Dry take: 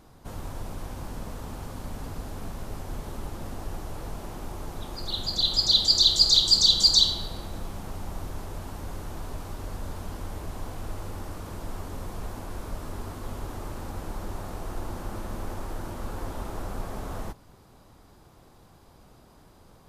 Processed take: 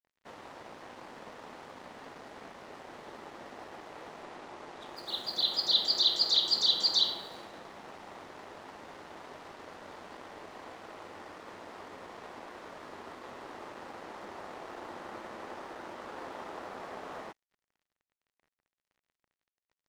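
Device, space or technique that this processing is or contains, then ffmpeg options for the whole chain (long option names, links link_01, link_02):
pocket radio on a weak battery: -filter_complex "[0:a]highpass=380,lowpass=3700,aeval=exprs='sgn(val(0))*max(abs(val(0))-0.00251,0)':channel_layout=same,equalizer=frequency=1900:width_type=o:width=0.25:gain=5,asettb=1/sr,asplit=3[link_01][link_02][link_03];[link_01]atrim=end=4.234[link_04];[link_02]atrim=start=4.23:end=4.86,asetpts=PTS-STARTPTS,afade=type=in:duration=0.004:curve=qsin,afade=type=out:start_time=0.626:duration=0.004:curve=qsin,lowpass=11000[link_05];[link_03]atrim=start=4.856[link_06];[link_04][link_05]acrossfade=duration=0.004:curve1=hsin:curve2=qsin[link_07];[link_07][link_06]acrossfade=duration=0.004:curve1=qsin:curve2=hsin,adynamicequalizer=threshold=0.0158:dfrequency=3900:dqfactor=0.7:tfrequency=3900:tqfactor=0.7:attack=5:release=100:ratio=0.375:range=2.5:mode=cutabove:tftype=highshelf"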